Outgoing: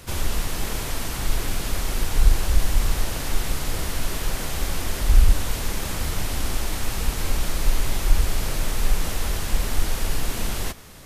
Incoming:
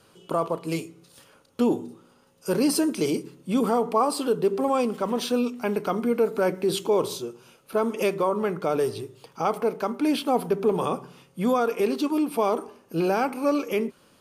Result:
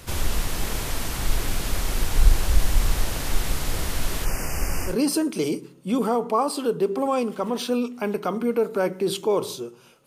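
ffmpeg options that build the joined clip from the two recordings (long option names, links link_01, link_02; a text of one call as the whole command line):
ffmpeg -i cue0.wav -i cue1.wav -filter_complex "[0:a]asplit=3[link_01][link_02][link_03];[link_01]afade=type=out:start_time=4.24:duration=0.02[link_04];[link_02]asuperstop=centerf=3700:order=12:qfactor=2.2,afade=type=in:start_time=4.24:duration=0.02,afade=type=out:start_time=4.96:duration=0.02[link_05];[link_03]afade=type=in:start_time=4.96:duration=0.02[link_06];[link_04][link_05][link_06]amix=inputs=3:normalize=0,apad=whole_dur=10.06,atrim=end=10.06,atrim=end=4.96,asetpts=PTS-STARTPTS[link_07];[1:a]atrim=start=2.46:end=7.68,asetpts=PTS-STARTPTS[link_08];[link_07][link_08]acrossfade=duration=0.12:curve1=tri:curve2=tri" out.wav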